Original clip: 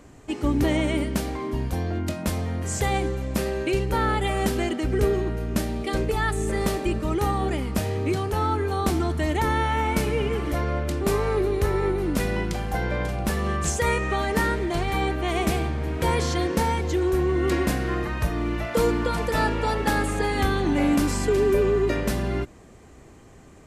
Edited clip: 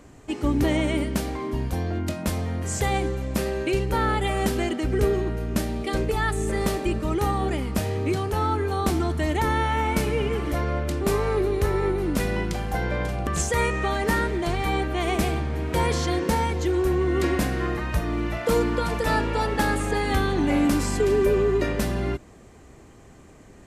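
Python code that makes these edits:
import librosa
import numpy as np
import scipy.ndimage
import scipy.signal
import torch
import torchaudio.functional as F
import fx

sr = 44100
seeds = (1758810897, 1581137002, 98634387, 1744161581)

y = fx.edit(x, sr, fx.cut(start_s=13.27, length_s=0.28), tone=tone)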